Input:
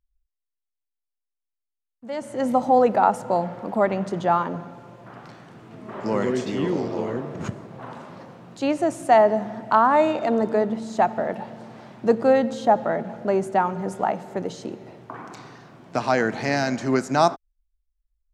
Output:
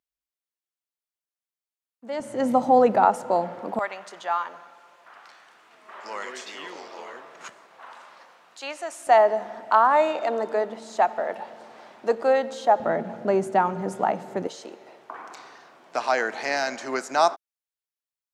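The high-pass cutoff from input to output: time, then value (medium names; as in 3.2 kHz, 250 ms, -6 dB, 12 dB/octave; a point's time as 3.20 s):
250 Hz
from 2.20 s 110 Hz
from 3.05 s 260 Hz
from 3.79 s 1.1 kHz
from 9.07 s 500 Hz
from 12.80 s 160 Hz
from 14.47 s 550 Hz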